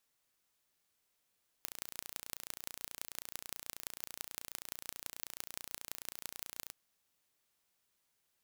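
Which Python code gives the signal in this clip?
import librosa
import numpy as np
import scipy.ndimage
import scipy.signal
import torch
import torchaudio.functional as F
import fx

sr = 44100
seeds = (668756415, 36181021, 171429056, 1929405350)

y = fx.impulse_train(sr, length_s=5.07, per_s=29.3, accent_every=5, level_db=-11.5)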